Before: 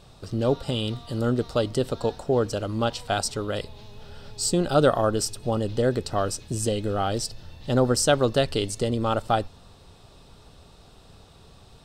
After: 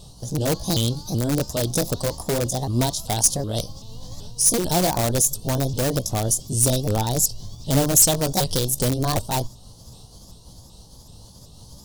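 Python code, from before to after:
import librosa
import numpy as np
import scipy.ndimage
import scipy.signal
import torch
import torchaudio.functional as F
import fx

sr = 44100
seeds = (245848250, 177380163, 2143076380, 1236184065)

p1 = fx.pitch_ramps(x, sr, semitones=5.5, every_ms=382)
p2 = fx.band_shelf(p1, sr, hz=1800.0, db=-14.0, octaves=1.1)
p3 = (np.mod(10.0 ** (19.0 / 20.0) * p2 + 1.0, 2.0) - 1.0) / 10.0 ** (19.0 / 20.0)
p4 = p2 + F.gain(torch.from_numpy(p3), -6.0).numpy()
p5 = fx.bass_treble(p4, sr, bass_db=7, treble_db=12)
y = fx.am_noise(p5, sr, seeds[0], hz=5.7, depth_pct=50)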